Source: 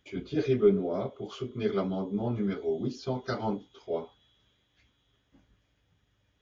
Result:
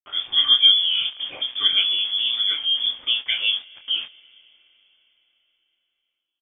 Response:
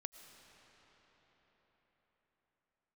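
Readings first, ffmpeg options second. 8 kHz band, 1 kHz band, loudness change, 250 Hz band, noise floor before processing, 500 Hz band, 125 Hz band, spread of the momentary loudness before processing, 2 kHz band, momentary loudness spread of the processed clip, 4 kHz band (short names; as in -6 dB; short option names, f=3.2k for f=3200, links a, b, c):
n/a, -3.5 dB, +12.5 dB, under -20 dB, -73 dBFS, under -20 dB, under -25 dB, 13 LU, +15.5 dB, 13 LU, +34.0 dB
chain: -filter_complex "[0:a]aeval=exprs='val(0)*gte(abs(val(0)),0.00562)':c=same,lowpass=f=3.1k:t=q:w=0.5098,lowpass=f=3.1k:t=q:w=0.6013,lowpass=f=3.1k:t=q:w=0.9,lowpass=f=3.1k:t=q:w=2.563,afreqshift=-3600,asplit=2[a][b];[b]adelay=24,volume=-7.5dB[c];[a][c]amix=inputs=2:normalize=0,asplit=2[d][e];[1:a]atrim=start_sample=2205,lowpass=4.2k[f];[e][f]afir=irnorm=-1:irlink=0,volume=-8.5dB[g];[d][g]amix=inputs=2:normalize=0,volume=7.5dB"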